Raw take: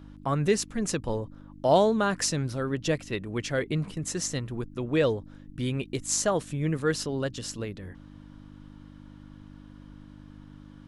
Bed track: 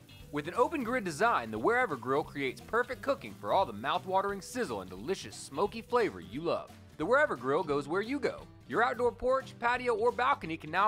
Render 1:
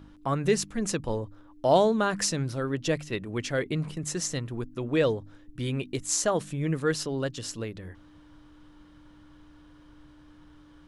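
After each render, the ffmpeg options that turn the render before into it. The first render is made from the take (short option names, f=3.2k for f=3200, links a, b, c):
-af "bandreject=f=50:t=h:w=4,bandreject=f=100:t=h:w=4,bandreject=f=150:t=h:w=4,bandreject=f=200:t=h:w=4,bandreject=f=250:t=h:w=4"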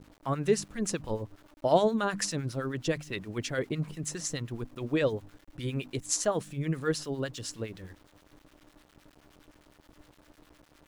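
-filter_complex "[0:a]aeval=exprs='val(0)*gte(abs(val(0)),0.00335)':c=same,acrossover=split=1100[a][b];[a]aeval=exprs='val(0)*(1-0.7/2+0.7/2*cos(2*PI*9.7*n/s))':c=same[c];[b]aeval=exprs='val(0)*(1-0.7/2-0.7/2*cos(2*PI*9.7*n/s))':c=same[d];[c][d]amix=inputs=2:normalize=0"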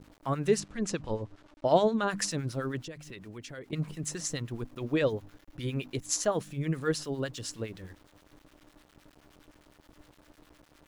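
-filter_complex "[0:a]asettb=1/sr,asplit=3[a][b][c];[a]atrim=end=0.604[d];[b]atrim=start=0.6:end=2.08,asetpts=PTS-STARTPTS,afade=t=in:d=0.004:c=qsin,afade=t=out:st=1.476:d=0.004:c=qsin,lowpass=6.6k[e];[c]atrim=start=2.076[f];[d][e]acrossfade=d=0.004:c1=hsin:c2=qsin[g];[g][f]acrossfade=d=0.004:c1=qsin:c2=hsin,asettb=1/sr,asplit=3[h][i][j];[h]atrim=end=2.814[k];[i]atrim=start=2.81:end=3.73,asetpts=PTS-STARTPTS,afade=t=in:d=0.004:c=qsin,afade=t=out:st=0.916:d=0.004:c=qsin,acompressor=threshold=-43dB:ratio=3:attack=3.2:release=140:knee=1:detection=peak[l];[j]atrim=start=3.726[m];[k][l]acrossfade=d=0.004:c1=hsin:c2=qsin[n];[n][m]acrossfade=d=0.004:c1=qsin:c2=hsin,asettb=1/sr,asplit=3[o][p][q];[o]atrim=end=4.754[r];[p]atrim=start=4.75:end=6.53,asetpts=PTS-STARTPTS,afade=t=in:d=0.004:c=qsin,afade=t=out:st=1.776:d=0.004:c=qsin,equalizer=f=8.3k:w=6.8:g=-7[s];[q]atrim=start=6.526[t];[r][s]acrossfade=d=0.004:c1=hsin:c2=qsin[u];[u][t]acrossfade=d=0.004:c1=qsin:c2=hsin"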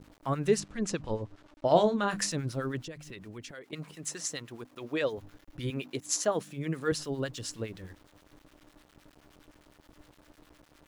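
-filter_complex "[0:a]asettb=1/sr,asplit=3[a][b][c];[a]atrim=end=1.674[d];[b]atrim=start=1.67:end=2.32,asetpts=PTS-STARTPTS,afade=t=in:d=0.004:c=qsin,afade=t=out:st=0.646:d=0.004:c=qsin,asplit=2[e][f];[f]adelay=29,volume=-9dB[g];[e][g]amix=inputs=2:normalize=0,atrim=end_sample=28665[h];[c]atrim=start=2.316[i];[d][h]acrossfade=d=0.004:c1=hsin:c2=qsin[j];[j][i]acrossfade=d=0.004:c1=qsin:c2=hsin,asettb=1/sr,asplit=3[k][l][m];[k]atrim=end=3.514[n];[l]atrim=start=3.51:end=5.18,asetpts=PTS-STARTPTS,afade=t=in:d=0.004:c=qsin,afade=t=out:st=1.666:d=0.004:c=qsin,highpass=f=480:p=1[o];[m]atrim=start=5.176[p];[n][o]acrossfade=d=0.004:c1=hsin:c2=qsin[q];[q][p]acrossfade=d=0.004:c1=qsin:c2=hsin,asettb=1/sr,asplit=3[r][s][t];[r]atrim=end=5.704[u];[s]atrim=start=5.7:end=6.92,asetpts=PTS-STARTPTS,afade=t=in:d=0.004:c=qsin,afade=t=out:st=1.216:d=0.004:c=qsin,highpass=170[v];[t]atrim=start=6.916[w];[u][v]acrossfade=d=0.004:c1=hsin:c2=qsin[x];[x][w]acrossfade=d=0.004:c1=qsin:c2=hsin"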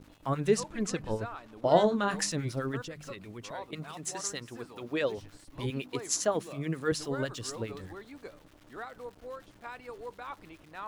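-filter_complex "[1:a]volume=-14dB[a];[0:a][a]amix=inputs=2:normalize=0"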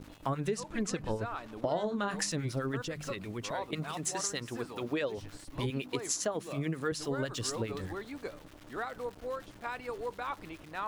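-filter_complex "[0:a]asplit=2[a][b];[b]alimiter=limit=-19.5dB:level=0:latency=1:release=279,volume=-2dB[c];[a][c]amix=inputs=2:normalize=0,acompressor=threshold=-30dB:ratio=5"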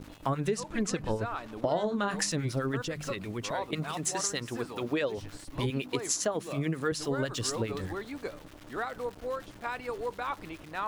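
-af "volume=3dB"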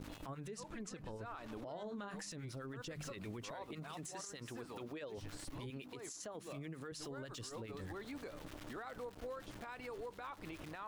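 -af "acompressor=threshold=-40dB:ratio=12,alimiter=level_in=14dB:limit=-24dB:level=0:latency=1:release=39,volume=-14dB"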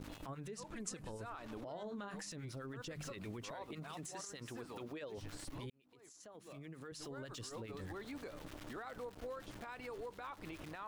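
-filter_complex "[0:a]asettb=1/sr,asplit=3[a][b][c];[a]atrim=end=0.764[d];[b]atrim=start=0.76:end=1.3,asetpts=PTS-STARTPTS,afade=t=in:d=0.004:c=qsin,afade=t=out:st=0.536:d=0.004:c=qsin,equalizer=f=9.2k:t=o:w=1.2:g=11.5[e];[c]atrim=start=1.296[f];[d][e]acrossfade=d=0.004:c1=hsin:c2=qsin[g];[g][f]acrossfade=d=0.004:c1=qsin:c2=hsin,asplit=2[h][i];[h]atrim=end=5.7,asetpts=PTS-STARTPTS,afade=t=out:st=5.696:d=0.004:c=hsin[j];[i]atrim=start=5.7,asetpts=PTS-STARTPTS,afade=t=in:d=1.57[k];[j][k]concat=n=2:v=0:a=1"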